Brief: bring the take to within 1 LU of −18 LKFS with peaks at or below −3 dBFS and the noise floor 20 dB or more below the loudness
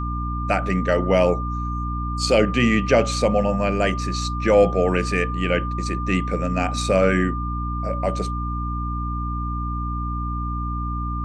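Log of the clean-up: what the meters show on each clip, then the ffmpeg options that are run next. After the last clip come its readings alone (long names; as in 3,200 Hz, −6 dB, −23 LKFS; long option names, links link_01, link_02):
mains hum 60 Hz; hum harmonics up to 300 Hz; level of the hum −24 dBFS; interfering tone 1,200 Hz; level of the tone −29 dBFS; integrated loudness −22.0 LKFS; sample peak −4.0 dBFS; target loudness −18.0 LKFS
→ -af "bandreject=frequency=60:width_type=h:width=4,bandreject=frequency=120:width_type=h:width=4,bandreject=frequency=180:width_type=h:width=4,bandreject=frequency=240:width_type=h:width=4,bandreject=frequency=300:width_type=h:width=4"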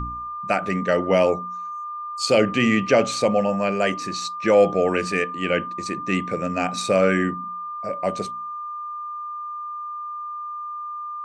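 mains hum none found; interfering tone 1,200 Hz; level of the tone −29 dBFS
→ -af "bandreject=frequency=1200:width=30"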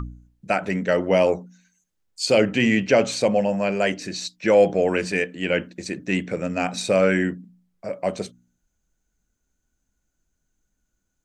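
interfering tone none found; integrated loudness −22.0 LKFS; sample peak −6.0 dBFS; target loudness −18.0 LKFS
→ -af "volume=4dB,alimiter=limit=-3dB:level=0:latency=1"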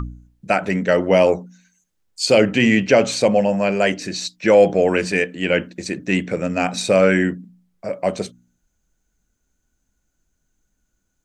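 integrated loudness −18.0 LKFS; sample peak −3.0 dBFS; background noise floor −73 dBFS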